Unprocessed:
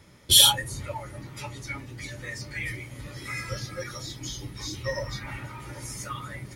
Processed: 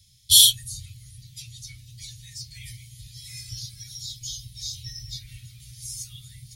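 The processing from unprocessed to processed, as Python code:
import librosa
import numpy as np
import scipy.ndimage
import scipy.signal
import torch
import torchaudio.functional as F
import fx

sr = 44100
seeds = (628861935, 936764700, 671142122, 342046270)

y = scipy.signal.sosfilt(scipy.signal.cheby1(3, 1.0, [120.0, 3700.0], 'bandstop', fs=sr, output='sos'), x)
y = fx.low_shelf(y, sr, hz=430.0, db=-7.5)
y = F.gain(torch.from_numpy(y), 4.5).numpy()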